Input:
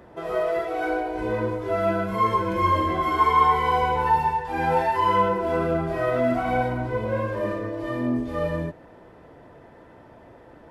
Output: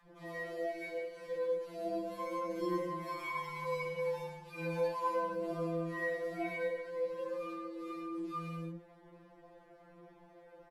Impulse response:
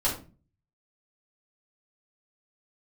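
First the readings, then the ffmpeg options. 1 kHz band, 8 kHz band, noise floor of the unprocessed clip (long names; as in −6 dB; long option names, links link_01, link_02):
−19.5 dB, can't be measured, −49 dBFS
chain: -filter_complex "[0:a]aphaser=in_gain=1:out_gain=1:delay=2.3:decay=0.34:speed=1.1:type=triangular,acrossover=split=190|950[link_01][link_02][link_03];[link_01]adelay=30[link_04];[link_02]adelay=70[link_05];[link_04][link_05][link_03]amix=inputs=3:normalize=0,afftfilt=real='re*2.83*eq(mod(b,8),0)':imag='im*2.83*eq(mod(b,8),0)':win_size=2048:overlap=0.75,volume=-7dB"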